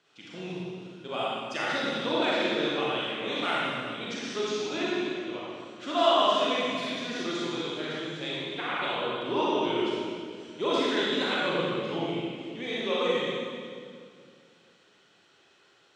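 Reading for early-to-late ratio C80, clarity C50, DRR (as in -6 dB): -2.0 dB, -4.5 dB, -7.5 dB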